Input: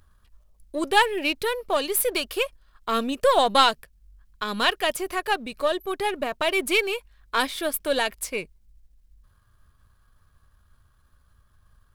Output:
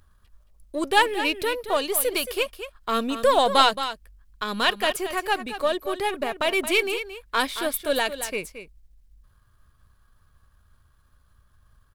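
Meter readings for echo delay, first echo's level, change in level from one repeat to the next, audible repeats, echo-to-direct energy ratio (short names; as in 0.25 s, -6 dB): 0.223 s, -11.0 dB, no steady repeat, 1, -11.0 dB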